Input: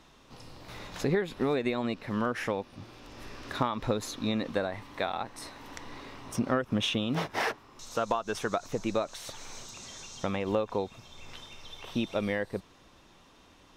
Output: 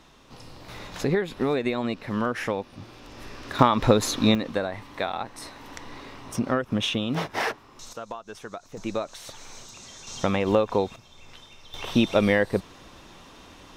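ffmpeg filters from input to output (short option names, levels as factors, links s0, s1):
-af "asetnsamples=n=441:p=0,asendcmd='3.59 volume volume 11dB;4.35 volume volume 3dB;7.93 volume volume -7.5dB;8.77 volume volume 0.5dB;10.07 volume volume 7.5dB;10.96 volume volume -1.5dB;11.74 volume volume 10dB',volume=1.5"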